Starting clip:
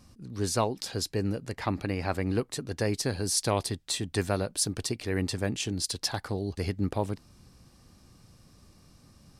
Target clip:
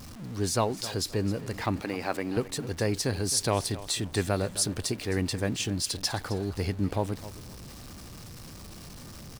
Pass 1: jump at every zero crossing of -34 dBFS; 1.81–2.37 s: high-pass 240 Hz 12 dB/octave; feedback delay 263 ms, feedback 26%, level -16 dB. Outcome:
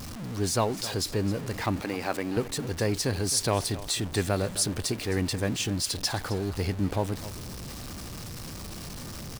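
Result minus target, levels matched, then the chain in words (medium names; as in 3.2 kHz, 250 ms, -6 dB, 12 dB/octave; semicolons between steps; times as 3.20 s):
jump at every zero crossing: distortion +6 dB
jump at every zero crossing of -40.5 dBFS; 1.81–2.37 s: high-pass 240 Hz 12 dB/octave; feedback delay 263 ms, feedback 26%, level -16 dB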